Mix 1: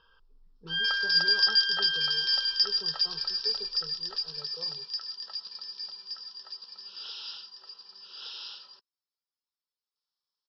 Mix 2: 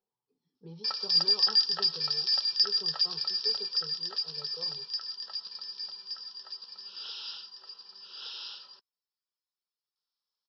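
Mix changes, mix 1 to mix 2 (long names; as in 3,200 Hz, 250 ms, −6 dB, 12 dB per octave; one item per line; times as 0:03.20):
speech: remove linear-phase brick-wall low-pass 2,900 Hz
first sound: muted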